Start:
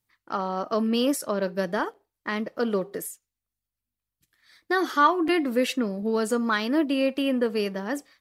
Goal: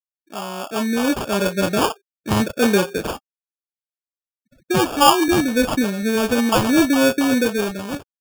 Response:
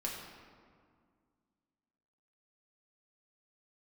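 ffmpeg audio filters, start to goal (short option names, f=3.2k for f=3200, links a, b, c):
-filter_complex "[0:a]acrossover=split=590[a][b];[b]adelay=30[c];[a][c]amix=inputs=2:normalize=0,dynaudnorm=f=490:g=5:m=11.5dB,afftfilt=real='re*gte(hypot(re,im),0.0141)':imag='im*gte(hypot(re,im),0.0141)':win_size=1024:overlap=0.75,acrusher=samples=22:mix=1:aa=0.000001"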